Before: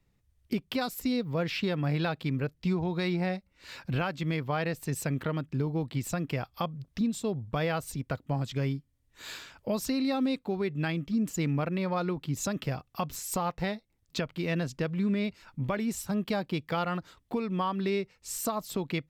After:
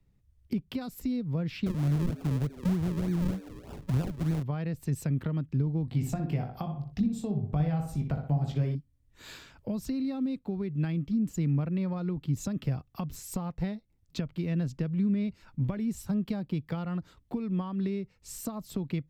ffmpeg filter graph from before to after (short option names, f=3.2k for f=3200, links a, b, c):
-filter_complex "[0:a]asettb=1/sr,asplit=3[a][b][c];[a]atrim=end=1.664[d];[b]atrim=start=1.66:end=4.43,asetpts=PTS-STARTPTS,afade=t=in:d=0.004:c=qsin,afade=t=out:st=2.766:d=0.004:c=qsin,asplit=5[e][f][g][h][i];[f]adelay=245,afreqshift=120,volume=-17.5dB[j];[g]adelay=490,afreqshift=240,volume=-24.6dB[k];[h]adelay=735,afreqshift=360,volume=-31.8dB[l];[i]adelay=980,afreqshift=480,volume=-38.9dB[m];[e][j][k][l][m]amix=inputs=5:normalize=0,atrim=end_sample=122157,acrusher=samples=42:mix=1:aa=0.000001:lfo=1:lforange=42:lforate=3.3[n];[c]atrim=start=4.426[o];[d][n]acrossfade=d=0.004:c1=hsin:c2=qsin[p];[p][o]acrossfade=d=0.004:c1=qsin:c2=hsin,asettb=1/sr,asplit=3[q][r][s];[q]atrim=end=5.854[t];[r]atrim=start=5.85:end=8.75,asetpts=PTS-STARTPTS,afade=t=in:d=0.004:c=qsin,afade=t=out:st=2.896:d=0.004:c=qsin,equalizer=f=750:t=o:w=0.31:g=10.5,asplit=2[u][v];[v]adelay=20,volume=-6dB[w];[u][w]amix=inputs=2:normalize=0,atrim=end_sample=127890,asplit=2[x][y];[y]adelay=61,lowpass=f=2.5k:p=1,volume=-6dB,asplit=2[z][aa];[aa]adelay=61,lowpass=f=2.5k:p=1,volume=0.37,asplit=2[ab][ac];[ac]adelay=61,lowpass=f=2.5k:p=1,volume=0.37,asplit=2[ad][ae];[ae]adelay=61,lowpass=f=2.5k:p=1,volume=0.37[af];[x][z][ab][ad][af]amix=inputs=5:normalize=0,atrim=end_sample=127890[ag];[s]atrim=start=8.746[ah];[t][ag]acrossfade=d=0.004:c1=hsin:c2=qsin[ai];[ai][ah]acrossfade=d=0.004:c1=qsin:c2=hsin,lowshelf=f=350:g=11,acrossover=split=250[aj][ak];[ak]acompressor=threshold=-32dB:ratio=6[al];[aj][al]amix=inputs=2:normalize=0,volume=-5.5dB"